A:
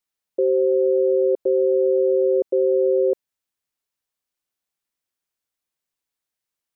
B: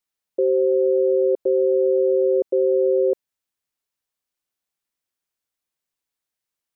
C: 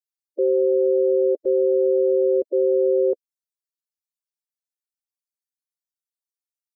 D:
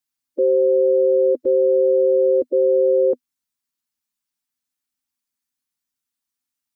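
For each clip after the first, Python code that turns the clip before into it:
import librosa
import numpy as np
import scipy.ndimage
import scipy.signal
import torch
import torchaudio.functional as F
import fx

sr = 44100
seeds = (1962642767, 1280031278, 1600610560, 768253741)

y1 = x
y2 = fx.bin_expand(y1, sr, power=3.0)
y3 = fx.graphic_eq_31(y2, sr, hz=(250, 400, 630), db=(10, -11, -10))
y3 = F.gain(torch.from_numpy(y3), 9.0).numpy()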